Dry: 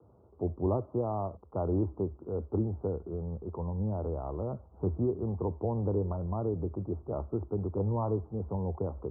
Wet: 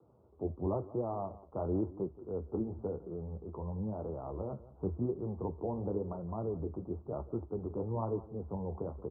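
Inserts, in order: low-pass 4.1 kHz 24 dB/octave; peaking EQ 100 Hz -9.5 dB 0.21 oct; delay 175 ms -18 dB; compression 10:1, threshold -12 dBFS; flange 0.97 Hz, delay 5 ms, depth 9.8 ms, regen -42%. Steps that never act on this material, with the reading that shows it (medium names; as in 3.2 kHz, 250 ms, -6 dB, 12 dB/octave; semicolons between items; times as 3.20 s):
low-pass 4.1 kHz: input has nothing above 1.1 kHz; compression, threshold -12 dBFS: peak at its input -18.5 dBFS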